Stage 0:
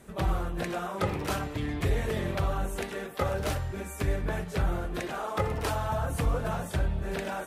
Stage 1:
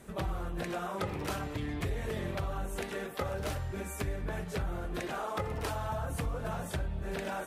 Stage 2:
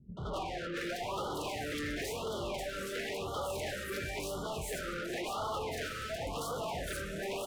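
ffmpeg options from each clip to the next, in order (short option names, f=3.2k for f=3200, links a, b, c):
-af "acompressor=threshold=-33dB:ratio=3"
-filter_complex "[0:a]acrossover=split=170|4200[a][b][c];[b]adelay=170[d];[c]adelay=770[e];[a][d][e]amix=inputs=3:normalize=0,asplit=2[f][g];[g]highpass=f=720:p=1,volume=33dB,asoftclip=type=tanh:threshold=-21dB[h];[f][h]amix=inputs=2:normalize=0,lowpass=f=5.1k:p=1,volume=-6dB,afftfilt=real='re*(1-between(b*sr/1024,820*pow(2100/820,0.5+0.5*sin(2*PI*0.96*pts/sr))/1.41,820*pow(2100/820,0.5+0.5*sin(2*PI*0.96*pts/sr))*1.41))':imag='im*(1-between(b*sr/1024,820*pow(2100/820,0.5+0.5*sin(2*PI*0.96*pts/sr))/1.41,820*pow(2100/820,0.5+0.5*sin(2*PI*0.96*pts/sr))*1.41))':win_size=1024:overlap=0.75,volume=-8.5dB"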